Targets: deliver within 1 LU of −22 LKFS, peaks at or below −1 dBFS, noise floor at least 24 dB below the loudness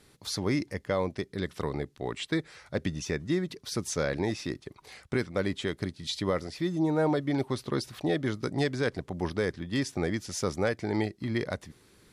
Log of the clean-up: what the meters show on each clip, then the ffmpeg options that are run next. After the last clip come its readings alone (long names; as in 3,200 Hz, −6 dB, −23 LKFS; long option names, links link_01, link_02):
integrated loudness −31.5 LKFS; sample peak −15.5 dBFS; target loudness −22.0 LKFS
→ -af "volume=9.5dB"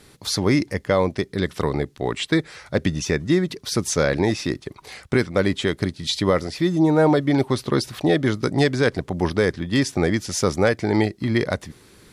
integrated loudness −22.0 LKFS; sample peak −6.0 dBFS; background noise floor −51 dBFS